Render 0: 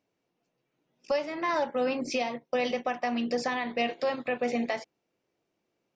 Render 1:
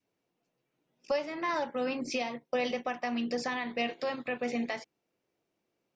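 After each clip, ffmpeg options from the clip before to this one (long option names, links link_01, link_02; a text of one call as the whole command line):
ffmpeg -i in.wav -af "adynamicequalizer=threshold=0.00794:dfrequency=620:dqfactor=1.4:tfrequency=620:tqfactor=1.4:attack=5:release=100:ratio=0.375:range=2.5:mode=cutabove:tftype=bell,volume=-2dB" out.wav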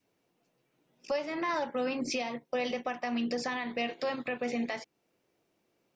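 ffmpeg -i in.wav -af "alimiter=level_in=5dB:limit=-24dB:level=0:latency=1:release=343,volume=-5dB,volume=6dB" out.wav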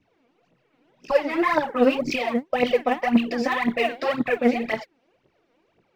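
ffmpeg -i in.wav -af "lowpass=3200,aphaser=in_gain=1:out_gain=1:delay=4.4:decay=0.76:speed=1.9:type=triangular,volume=7dB" out.wav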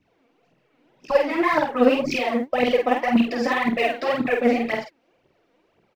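ffmpeg -i in.wav -filter_complex "[0:a]asplit=2[link_01][link_02];[link_02]adelay=48,volume=-4dB[link_03];[link_01][link_03]amix=inputs=2:normalize=0" out.wav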